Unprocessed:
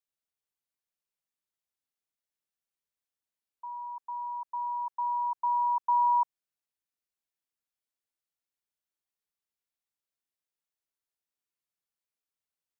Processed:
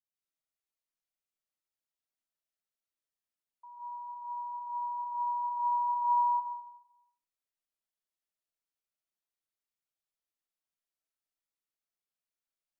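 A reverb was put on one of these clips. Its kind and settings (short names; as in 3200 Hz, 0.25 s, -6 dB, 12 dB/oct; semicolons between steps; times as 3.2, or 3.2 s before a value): digital reverb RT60 0.82 s, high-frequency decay 0.9×, pre-delay 0.1 s, DRR -6.5 dB; gain -11 dB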